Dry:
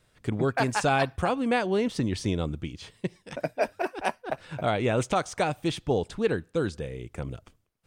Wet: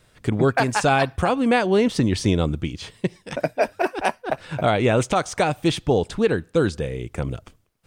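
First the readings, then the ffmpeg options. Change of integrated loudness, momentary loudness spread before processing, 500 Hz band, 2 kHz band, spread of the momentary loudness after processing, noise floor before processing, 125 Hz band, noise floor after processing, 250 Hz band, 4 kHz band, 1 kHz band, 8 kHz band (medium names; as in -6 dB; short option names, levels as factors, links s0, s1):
+6.5 dB, 12 LU, +6.5 dB, +6.0 dB, 10 LU, -68 dBFS, +7.0 dB, -61 dBFS, +7.0 dB, +6.5 dB, +6.0 dB, +6.5 dB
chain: -af "alimiter=limit=0.158:level=0:latency=1:release=274,volume=2.51"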